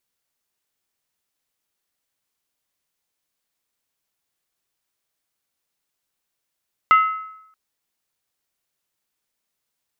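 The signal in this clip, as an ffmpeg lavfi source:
ffmpeg -f lavfi -i "aevalsrc='0.398*pow(10,-3*t/0.8)*sin(2*PI*1290*t)+0.126*pow(10,-3*t/0.634)*sin(2*PI*2056.3*t)+0.0398*pow(10,-3*t/0.547)*sin(2*PI*2755.4*t)+0.0126*pow(10,-3*t/0.528)*sin(2*PI*2961.8*t)+0.00398*pow(10,-3*t/0.491)*sin(2*PI*3422.4*t)':duration=0.63:sample_rate=44100" out.wav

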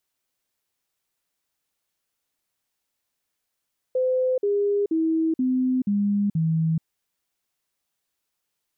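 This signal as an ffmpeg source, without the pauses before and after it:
ffmpeg -f lavfi -i "aevalsrc='0.112*clip(min(mod(t,0.48),0.43-mod(t,0.48))/0.005,0,1)*sin(2*PI*512*pow(2,-floor(t/0.48)/3)*mod(t,0.48))':duration=2.88:sample_rate=44100" out.wav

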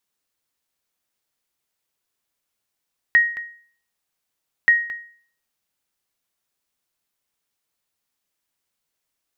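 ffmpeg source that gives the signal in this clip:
ffmpeg -f lavfi -i "aevalsrc='0.422*(sin(2*PI*1880*mod(t,1.53))*exp(-6.91*mod(t,1.53)/0.5)+0.188*sin(2*PI*1880*max(mod(t,1.53)-0.22,0))*exp(-6.91*max(mod(t,1.53)-0.22,0)/0.5))':duration=3.06:sample_rate=44100" out.wav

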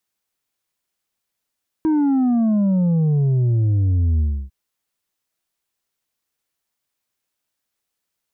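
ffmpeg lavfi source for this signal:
ffmpeg -f lavfi -i "aevalsrc='0.178*clip((2.65-t)/0.3,0,1)*tanh(1.68*sin(2*PI*320*2.65/log(65/320)*(exp(log(65/320)*t/2.65)-1)))/tanh(1.68)':duration=2.65:sample_rate=44100" out.wav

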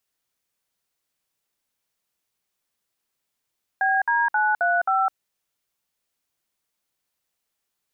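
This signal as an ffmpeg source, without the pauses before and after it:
ffmpeg -f lavfi -i "aevalsrc='0.0944*clip(min(mod(t,0.266),0.208-mod(t,0.266))/0.002,0,1)*(eq(floor(t/0.266),0)*(sin(2*PI*770*mod(t,0.266))+sin(2*PI*1633*mod(t,0.266)))+eq(floor(t/0.266),1)*(sin(2*PI*941*mod(t,0.266))+sin(2*PI*1633*mod(t,0.266)))+eq(floor(t/0.266),2)*(sin(2*PI*852*mod(t,0.266))+sin(2*PI*1477*mod(t,0.266)))+eq(floor(t/0.266),3)*(sin(2*PI*697*mod(t,0.266))+sin(2*PI*1477*mod(t,0.266)))+eq(floor(t/0.266),4)*(sin(2*PI*770*mod(t,0.266))+sin(2*PI*1336*mod(t,0.266))))':duration=1.33:sample_rate=44100" out.wav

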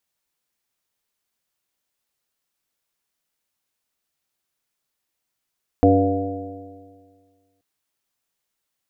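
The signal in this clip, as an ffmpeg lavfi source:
ffmpeg -f lavfi -i "aevalsrc='0.141*pow(10,-3*t/1.79)*sin(2*PI*93.74*t)+0.0251*pow(10,-3*t/1.79)*sin(2*PI*188.28*t)+0.224*pow(10,-3*t/1.79)*sin(2*PI*284.44*t)+0.0447*pow(10,-3*t/1.79)*sin(2*PI*382.99*t)+0.178*pow(10,-3*t/1.79)*sin(2*PI*484.67*t)+0.0501*pow(10,-3*t/1.79)*sin(2*PI*590.19*t)+0.141*pow(10,-3*t/1.79)*sin(2*PI*700.21*t)':duration=1.78:sample_rate=44100" out.wav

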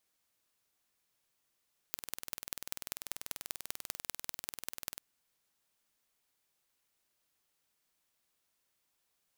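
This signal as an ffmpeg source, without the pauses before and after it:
ffmpeg -f lavfi -i "aevalsrc='0.398*eq(mod(n,2162),0)*(0.5+0.5*eq(mod(n,8648),0))':duration=3.04:sample_rate=44100" out.wav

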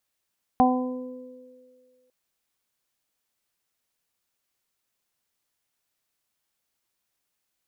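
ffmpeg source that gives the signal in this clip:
ffmpeg -f lavfi -i "aevalsrc='0.126*pow(10,-3*t/1.54)*sin(2*PI*253*t)+0.0501*pow(10,-3*t/2.35)*sin(2*PI*506*t)+0.2*pow(10,-3*t/0.53)*sin(2*PI*759*t)+0.0531*pow(10,-3*t/0.86)*sin(2*PI*1012*t)':duration=1.5:sample_rate=44100" out.wav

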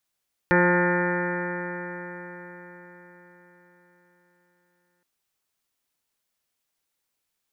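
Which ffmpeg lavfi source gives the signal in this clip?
ffmpeg -f lavfi -i "aevalsrc='0.0794*pow(10,-3*t/4.84)*sin(2*PI*176.03*t)+0.0841*pow(10,-3*t/4.84)*sin(2*PI*352.27*t)+0.075*pow(10,-3*t/4.84)*sin(2*PI*528.93*t)+0.01*pow(10,-3*t/4.84)*sin(2*PI*706.19*t)+0.0596*pow(10,-3*t/4.84)*sin(2*PI*884.28*t)+0.02*pow(10,-3*t/4.84)*sin(2*PI*1063.39*t)+0.0178*pow(10,-3*t/4.84)*sin(2*PI*1243.72*t)+0.0562*pow(10,-3*t/4.84)*sin(2*PI*1425.46*t)+0.0376*pow(10,-3*t/4.84)*sin(2*PI*1608.82*t)+0.075*pow(10,-3*t/4.84)*sin(2*PI*1793.99*t)+0.0224*pow(10,-3*t/4.84)*sin(2*PI*1981.15*t)+0.00794*pow(10,-3*t/4.84)*sin(2*PI*2170.49*t)+0.0141*pow(10,-3*t/4.84)*sin(2*PI*2362.2*t)':duration=4.52:sample_rate=44100" out.wav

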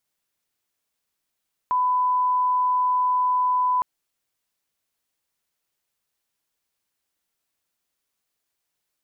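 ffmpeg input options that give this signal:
ffmpeg -f lavfi -i "sine=frequency=1000:duration=2.11:sample_rate=44100,volume=0.06dB" out.wav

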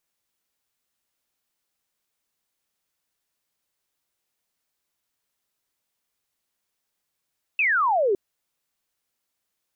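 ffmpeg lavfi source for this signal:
ffmpeg -f lavfi -i "aevalsrc='0.126*clip(t/0.002,0,1)*clip((0.56-t)/0.002,0,1)*sin(2*PI*2700*0.56/log(370/2700)*(exp(log(370/2700)*t/0.56)-1))':duration=0.56:sample_rate=44100" out.wav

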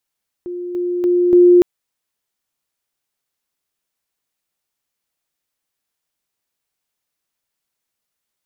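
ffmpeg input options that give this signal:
ffmpeg -f lavfi -i "aevalsrc='pow(10,(-23.5+6*floor(t/0.29))/20)*sin(2*PI*354*t)':duration=1.16:sample_rate=44100" out.wav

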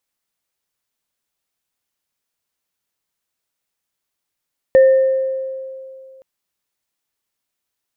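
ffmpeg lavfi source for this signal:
ffmpeg -f lavfi -i "aevalsrc='0.562*pow(10,-3*t/2.43)*sin(2*PI*529*t)+0.0708*pow(10,-3*t/1.03)*sin(2*PI*1810*t)':duration=1.47:sample_rate=44100" out.wav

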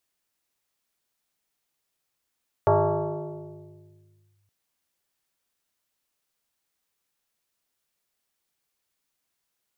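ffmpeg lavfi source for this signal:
ffmpeg -f lavfi -i "aevalsrc='0.188*pow(10,-3*t/2.03)*sin(2*PI*101*t+3.5*clip(1-t/1.79,0,1)*sin(2*PI*2.52*101*t))':duration=1.82:sample_rate=44100" out.wav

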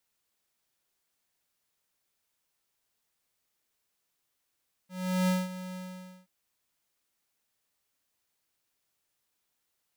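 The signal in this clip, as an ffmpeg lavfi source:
ffmpeg -f lavfi -i "aevalsrc='0.0562*(2*lt(mod(184*t,1),0.5)-1)':duration=1.377:sample_rate=44100,afade=type=in:duration=0.391,afade=type=out:start_time=0.391:duration=0.199:silence=0.188,afade=type=out:start_time=0.87:duration=0.507" out.wav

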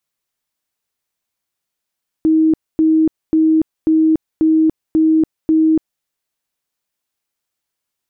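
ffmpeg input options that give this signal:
ffmpeg -f lavfi -i "aevalsrc='0.355*sin(2*PI*317*mod(t,0.54))*lt(mod(t,0.54),91/317)':duration=3.78:sample_rate=44100" out.wav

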